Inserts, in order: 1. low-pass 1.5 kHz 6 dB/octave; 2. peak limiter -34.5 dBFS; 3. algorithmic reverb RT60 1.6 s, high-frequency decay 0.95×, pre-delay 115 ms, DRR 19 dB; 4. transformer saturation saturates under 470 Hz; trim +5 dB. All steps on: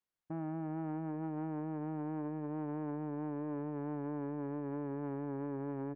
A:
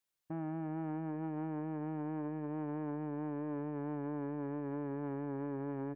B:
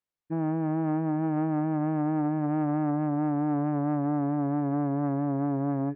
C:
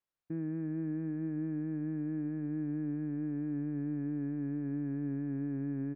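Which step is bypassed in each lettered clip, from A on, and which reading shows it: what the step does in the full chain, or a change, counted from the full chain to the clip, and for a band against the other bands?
1, 2 kHz band +2.0 dB; 2, mean gain reduction 11.0 dB; 4, crest factor change -3.5 dB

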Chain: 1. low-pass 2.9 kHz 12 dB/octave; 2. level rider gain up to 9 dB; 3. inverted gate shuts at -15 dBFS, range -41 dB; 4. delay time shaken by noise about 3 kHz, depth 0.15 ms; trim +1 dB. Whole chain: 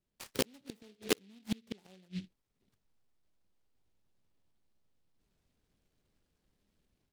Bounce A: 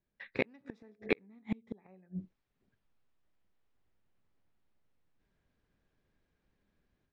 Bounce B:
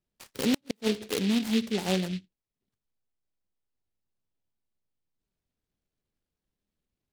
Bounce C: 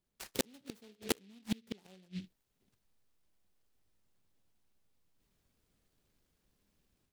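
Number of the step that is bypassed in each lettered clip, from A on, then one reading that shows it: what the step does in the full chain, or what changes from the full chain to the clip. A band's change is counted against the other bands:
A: 4, 4 kHz band -11.5 dB; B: 2, crest factor change -12.5 dB; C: 1, 500 Hz band -2.5 dB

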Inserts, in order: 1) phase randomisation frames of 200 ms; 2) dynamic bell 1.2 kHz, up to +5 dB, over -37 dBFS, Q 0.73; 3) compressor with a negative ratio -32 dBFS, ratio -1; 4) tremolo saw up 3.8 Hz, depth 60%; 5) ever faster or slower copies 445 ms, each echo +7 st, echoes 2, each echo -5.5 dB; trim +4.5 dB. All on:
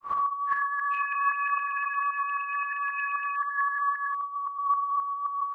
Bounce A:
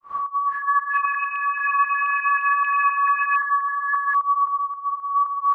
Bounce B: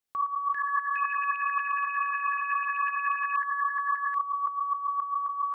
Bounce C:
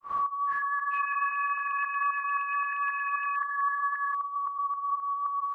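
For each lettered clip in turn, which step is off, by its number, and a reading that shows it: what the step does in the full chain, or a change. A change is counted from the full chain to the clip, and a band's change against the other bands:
3, loudness change +7.0 LU; 1, momentary loudness spread change -2 LU; 2, crest factor change -2.5 dB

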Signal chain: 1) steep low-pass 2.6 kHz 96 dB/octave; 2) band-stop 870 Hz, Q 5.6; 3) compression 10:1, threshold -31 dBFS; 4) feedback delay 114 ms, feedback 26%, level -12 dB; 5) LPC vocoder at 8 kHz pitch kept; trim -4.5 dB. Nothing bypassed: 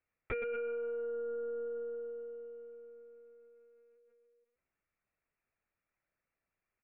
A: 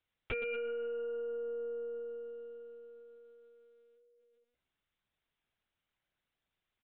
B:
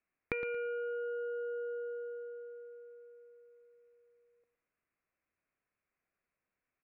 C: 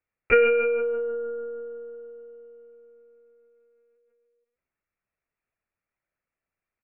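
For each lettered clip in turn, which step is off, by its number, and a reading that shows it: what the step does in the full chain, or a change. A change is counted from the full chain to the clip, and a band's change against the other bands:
1, 2 kHz band +3.5 dB; 5, crest factor change +6.0 dB; 3, mean gain reduction 5.5 dB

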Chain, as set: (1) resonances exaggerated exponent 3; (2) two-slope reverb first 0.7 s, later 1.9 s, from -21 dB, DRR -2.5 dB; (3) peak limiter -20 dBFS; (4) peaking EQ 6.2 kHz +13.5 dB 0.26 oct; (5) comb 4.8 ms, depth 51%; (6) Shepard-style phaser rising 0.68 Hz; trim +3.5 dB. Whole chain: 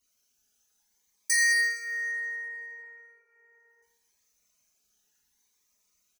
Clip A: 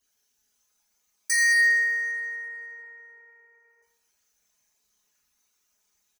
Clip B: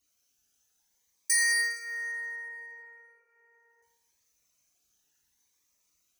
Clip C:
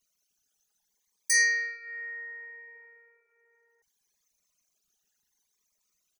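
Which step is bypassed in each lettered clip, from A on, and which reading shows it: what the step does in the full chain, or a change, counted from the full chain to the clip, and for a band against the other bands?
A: 6, 2 kHz band +4.5 dB; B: 5, 1 kHz band +3.5 dB; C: 2, 500 Hz band +3.5 dB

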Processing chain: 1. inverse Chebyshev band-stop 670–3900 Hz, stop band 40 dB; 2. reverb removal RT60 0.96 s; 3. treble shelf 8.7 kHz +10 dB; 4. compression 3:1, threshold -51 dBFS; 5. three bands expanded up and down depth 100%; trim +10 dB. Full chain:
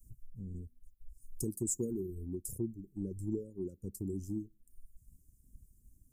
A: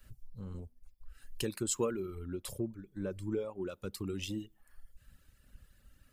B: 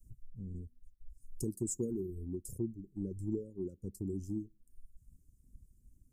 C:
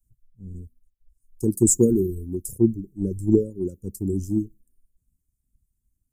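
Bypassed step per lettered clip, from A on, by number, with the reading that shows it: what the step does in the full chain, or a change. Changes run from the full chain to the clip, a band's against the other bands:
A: 1, 500 Hz band +5.0 dB; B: 3, 8 kHz band -4.0 dB; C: 4, mean gain reduction 8.5 dB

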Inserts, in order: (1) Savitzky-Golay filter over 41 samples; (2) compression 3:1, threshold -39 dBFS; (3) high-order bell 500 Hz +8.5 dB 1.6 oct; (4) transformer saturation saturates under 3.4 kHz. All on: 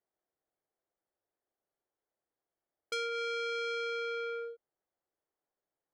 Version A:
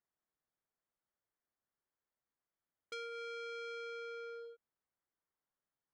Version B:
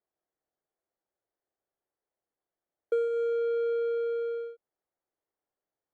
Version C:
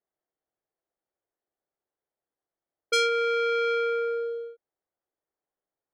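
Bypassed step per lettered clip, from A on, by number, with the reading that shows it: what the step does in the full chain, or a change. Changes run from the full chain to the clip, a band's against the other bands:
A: 3, loudness change -9.5 LU; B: 4, crest factor change -7.0 dB; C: 2, mean gain reduction 7.0 dB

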